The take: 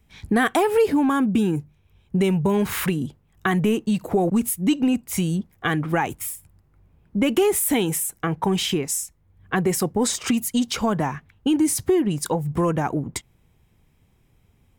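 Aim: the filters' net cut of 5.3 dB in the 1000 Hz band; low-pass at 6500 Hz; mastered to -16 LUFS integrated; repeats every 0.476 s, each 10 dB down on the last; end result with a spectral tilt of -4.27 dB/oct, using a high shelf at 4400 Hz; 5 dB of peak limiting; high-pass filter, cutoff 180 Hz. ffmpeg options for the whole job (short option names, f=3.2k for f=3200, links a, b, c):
-af "highpass=180,lowpass=6.5k,equalizer=f=1k:t=o:g=-7.5,highshelf=f=4.4k:g=7,alimiter=limit=-14dB:level=0:latency=1,aecho=1:1:476|952|1428|1904:0.316|0.101|0.0324|0.0104,volume=9dB"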